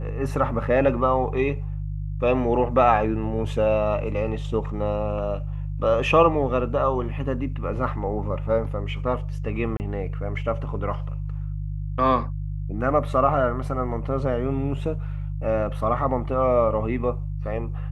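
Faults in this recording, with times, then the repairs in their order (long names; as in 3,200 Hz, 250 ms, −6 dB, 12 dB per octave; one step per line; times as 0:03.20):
mains hum 50 Hz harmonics 3 −29 dBFS
0:09.77–0:09.80: drop-out 29 ms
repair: hum removal 50 Hz, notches 3
repair the gap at 0:09.77, 29 ms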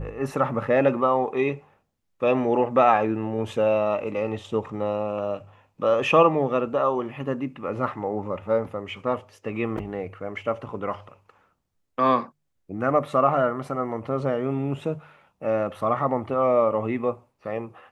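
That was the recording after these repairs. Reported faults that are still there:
none of them is left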